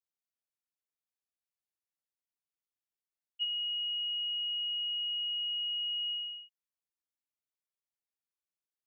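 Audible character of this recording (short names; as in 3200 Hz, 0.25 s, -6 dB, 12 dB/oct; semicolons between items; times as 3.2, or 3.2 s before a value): noise floor -95 dBFS; spectral tilt +23.0 dB/oct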